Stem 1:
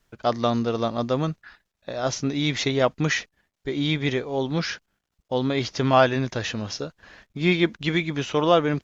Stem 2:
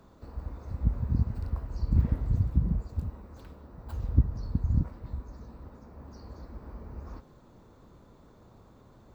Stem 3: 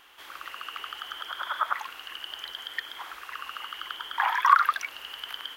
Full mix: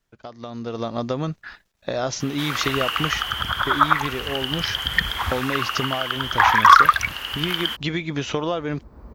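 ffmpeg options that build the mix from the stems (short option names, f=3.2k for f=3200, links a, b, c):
-filter_complex "[0:a]acompressor=threshold=-29dB:ratio=12,volume=-7dB,asplit=2[a][b];[1:a]acompressor=threshold=-27dB:ratio=6,adelay=2300,volume=-7.5dB[c];[2:a]asoftclip=type=hard:threshold=-12.5dB,adelay=2200,volume=-0.5dB[d];[b]apad=whole_len=504714[e];[c][e]sidechaincompress=threshold=-49dB:ratio=6:attack=16:release=747[f];[a][f][d]amix=inputs=3:normalize=0,dynaudnorm=f=150:g=9:m=15dB"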